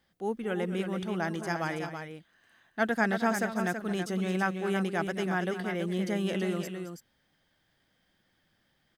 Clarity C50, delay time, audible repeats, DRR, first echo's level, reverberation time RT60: no reverb audible, 220 ms, 2, no reverb audible, −12.5 dB, no reverb audible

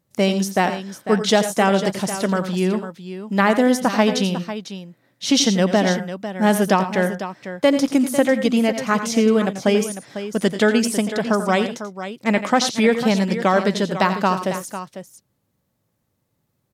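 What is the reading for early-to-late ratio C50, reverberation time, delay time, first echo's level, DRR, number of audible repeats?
no reverb audible, no reverb audible, 87 ms, −11.5 dB, no reverb audible, 2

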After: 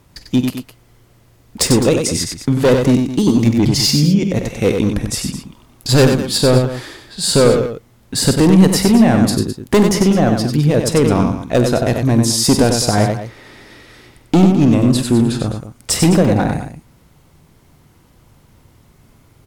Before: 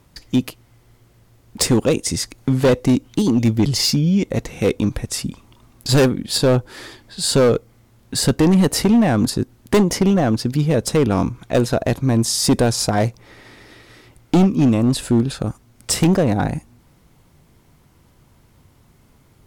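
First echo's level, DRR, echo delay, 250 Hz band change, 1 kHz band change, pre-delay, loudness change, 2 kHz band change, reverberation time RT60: −14.0 dB, no reverb audible, 48 ms, +4.0 dB, +4.0 dB, no reverb audible, +4.0 dB, +4.0 dB, no reverb audible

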